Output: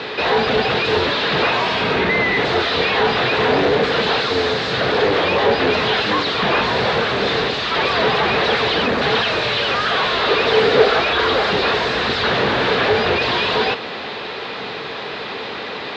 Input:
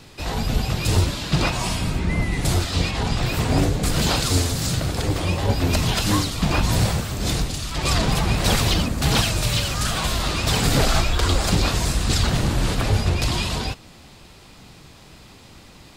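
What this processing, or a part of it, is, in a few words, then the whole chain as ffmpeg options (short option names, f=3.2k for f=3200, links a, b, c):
overdrive pedal into a guitar cabinet: -filter_complex "[0:a]asplit=2[a][b];[b]highpass=f=720:p=1,volume=35dB,asoftclip=type=tanh:threshold=-5dB[c];[a][c]amix=inputs=2:normalize=0,lowpass=f=2.2k:p=1,volume=-6dB,highpass=98,equalizer=f=99:t=q:w=4:g=-6,equalizer=f=160:t=q:w=4:g=-6,equalizer=f=310:t=q:w=4:g=-4,equalizer=f=440:t=q:w=4:g=10,equalizer=f=1.7k:t=q:w=4:g=4,equalizer=f=3.8k:t=q:w=4:g=4,lowpass=f=4.2k:w=0.5412,lowpass=f=4.2k:w=1.3066,asettb=1/sr,asplit=3[d][e][f];[d]atrim=end=10.274[g];[e]atrim=start=10.27:end=11,asetpts=PTS-STARTPTS,afade=t=in:d=0.004:c=qsin,afade=t=out:st=0.726:d=0.004:c=qsin,equalizer=f=440:t=o:w=0.44:g=8[h];[f]atrim=start=10.996[i];[g][h]acrossfade=d=0.004:c1=hsin:c2=qsin[j];[j][i]acrossfade=d=0.004:c1=qsin:c2=hsin,volume=-4dB"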